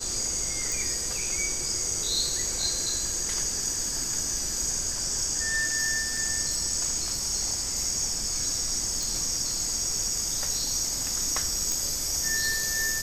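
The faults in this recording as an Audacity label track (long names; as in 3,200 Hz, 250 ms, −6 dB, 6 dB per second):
0.720000	0.720000	click
6.170000	6.170000	drop-out 3.4 ms
9.030000	9.030000	click
11.720000	11.720000	click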